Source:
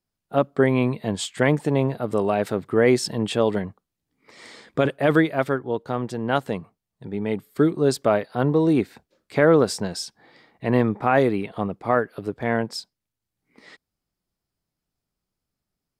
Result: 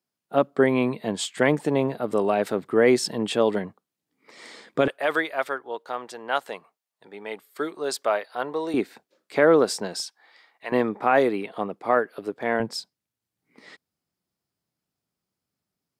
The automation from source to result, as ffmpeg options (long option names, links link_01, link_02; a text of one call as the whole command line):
ffmpeg -i in.wav -af "asetnsamples=nb_out_samples=441:pad=0,asendcmd='4.88 highpass f 670;8.74 highpass f 280;10 highpass f 920;10.72 highpass f 290;12.6 highpass f 110',highpass=200" out.wav